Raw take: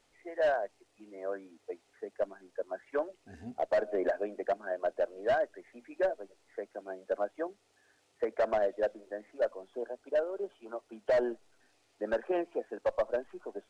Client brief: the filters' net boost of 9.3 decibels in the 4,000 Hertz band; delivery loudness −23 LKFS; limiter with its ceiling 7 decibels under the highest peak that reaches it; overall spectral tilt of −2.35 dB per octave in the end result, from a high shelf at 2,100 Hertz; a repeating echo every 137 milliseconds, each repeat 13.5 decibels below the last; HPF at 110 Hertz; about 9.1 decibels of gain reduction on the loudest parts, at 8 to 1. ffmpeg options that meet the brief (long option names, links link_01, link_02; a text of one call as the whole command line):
ffmpeg -i in.wav -af "highpass=110,highshelf=frequency=2100:gain=9,equalizer=frequency=4000:width_type=o:gain=4,acompressor=threshold=-33dB:ratio=8,alimiter=level_in=5.5dB:limit=-24dB:level=0:latency=1,volume=-5.5dB,aecho=1:1:137|274:0.211|0.0444,volume=19dB" out.wav